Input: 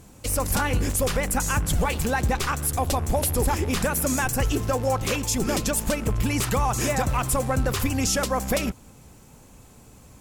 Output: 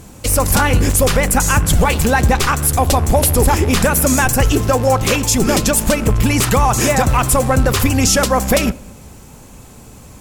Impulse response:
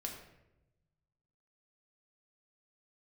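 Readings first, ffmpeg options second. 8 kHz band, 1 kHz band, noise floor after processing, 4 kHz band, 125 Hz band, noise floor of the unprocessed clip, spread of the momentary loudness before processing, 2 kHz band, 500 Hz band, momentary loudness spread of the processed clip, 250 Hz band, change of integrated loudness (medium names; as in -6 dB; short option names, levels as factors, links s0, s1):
+10.0 dB, +10.0 dB, -39 dBFS, +10.0 dB, +10.0 dB, -50 dBFS, 2 LU, +10.0 dB, +10.0 dB, 2 LU, +10.0 dB, +10.0 dB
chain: -filter_complex "[0:a]acontrast=77,asplit=2[s0][s1];[1:a]atrim=start_sample=2205[s2];[s1][s2]afir=irnorm=-1:irlink=0,volume=0.188[s3];[s0][s3]amix=inputs=2:normalize=0,volume=1.33"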